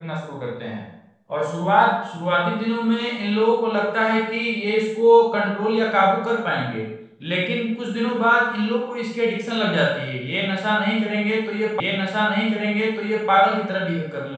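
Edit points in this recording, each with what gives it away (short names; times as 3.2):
11.8 repeat of the last 1.5 s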